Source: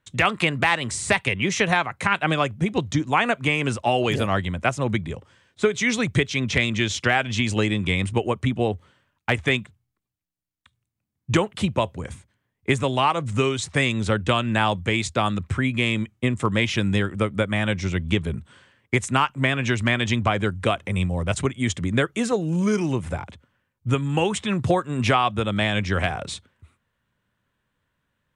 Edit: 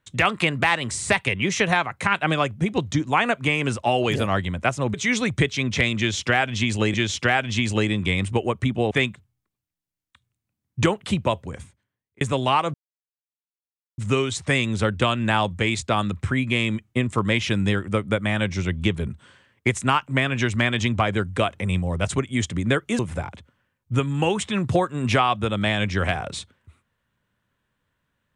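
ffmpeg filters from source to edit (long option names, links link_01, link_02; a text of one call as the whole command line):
ffmpeg -i in.wav -filter_complex "[0:a]asplit=7[link_01][link_02][link_03][link_04][link_05][link_06][link_07];[link_01]atrim=end=4.942[link_08];[link_02]atrim=start=5.708:end=7.712[link_09];[link_03]atrim=start=6.748:end=8.722[link_10];[link_04]atrim=start=9.418:end=12.72,asetpts=PTS-STARTPTS,afade=type=out:start_time=2.462:duration=0.84[link_11];[link_05]atrim=start=12.72:end=13.25,asetpts=PTS-STARTPTS,afade=type=in:duration=0.004:curve=hsin,afade=type=out:start_time=0.526:duration=0.004:curve=hsin,apad=pad_dur=1.24[link_12];[link_06]atrim=start=13.25:end=22.262,asetpts=PTS-STARTPTS,afade=type=in:duration=0.004:curve=hsin[link_13];[link_07]atrim=start=22.938[link_14];[link_08][link_09]acrossfade=duration=0.004:curve1=hsin:curve2=hsin[link_15];[link_15][link_10]acrossfade=duration=0.004:curve1=hsin:curve2=hsin[link_16];[link_11][link_12][link_13]concat=n=3:v=0:a=1[link_17];[link_16][link_17]acrossfade=duration=0.004:curve1=hsin:curve2=hsin[link_18];[link_18][link_14]acrossfade=duration=0.004:curve1=hsin:curve2=hsin" out.wav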